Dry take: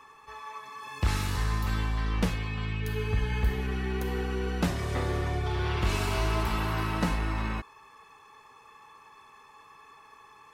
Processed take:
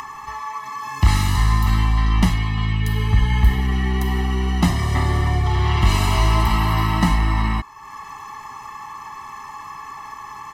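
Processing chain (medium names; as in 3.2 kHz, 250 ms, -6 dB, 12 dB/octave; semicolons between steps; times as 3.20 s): comb 1 ms, depth 95%; upward compressor, threshold -32 dBFS; trim +6.5 dB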